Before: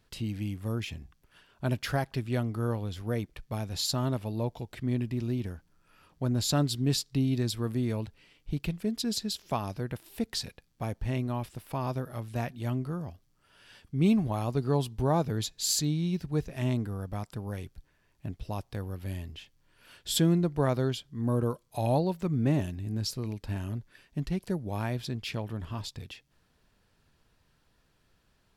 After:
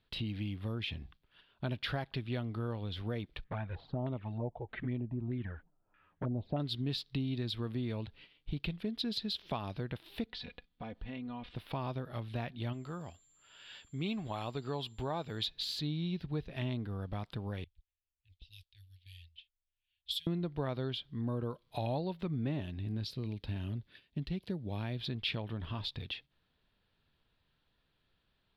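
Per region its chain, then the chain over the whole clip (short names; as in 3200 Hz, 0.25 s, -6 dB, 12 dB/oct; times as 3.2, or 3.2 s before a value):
3.44–6.6 envelope flanger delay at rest 11.6 ms, full sweep at -24.5 dBFS + LFO low-pass square 1.6 Hz 740–1800 Hz
10.26–11.56 LPF 4100 Hz + comb 4.1 ms, depth 62% + compressor 2.5:1, threshold -44 dBFS
12.72–15.45 low shelf 460 Hz -9 dB + whine 7300 Hz -47 dBFS
17.64–20.27 low-pass opened by the level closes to 1100 Hz, open at -29.5 dBFS + inverse Chebyshev band-stop 200–1100 Hz, stop band 50 dB + pre-emphasis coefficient 0.8
23.04–25.01 HPF 43 Hz + bell 1100 Hz -6.5 dB 2 oct
whole clip: gate -56 dBFS, range -9 dB; compressor 2.5:1, threshold -36 dBFS; resonant high shelf 5100 Hz -12 dB, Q 3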